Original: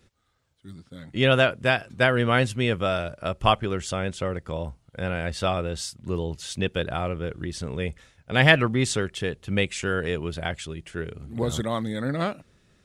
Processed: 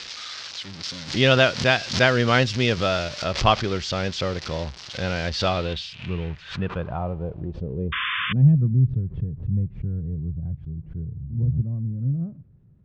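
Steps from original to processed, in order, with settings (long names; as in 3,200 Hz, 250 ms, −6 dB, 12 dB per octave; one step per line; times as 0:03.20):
spike at every zero crossing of −19.5 dBFS
0:00.83–0:03.24: high-shelf EQ 5,100 Hz +8.5 dB
0:05.77–0:08.62: gain on a spectral selection 210–2,300 Hz −7 dB
low-pass filter sweep 5,100 Hz → 130 Hz, 0:05.42–0:08.83
0:07.92–0:08.33: sound drawn into the spectrogram noise 1,000–3,600 Hz −26 dBFS
high-frequency loss of the air 190 metres
background raised ahead of every attack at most 130 dB per second
level +2 dB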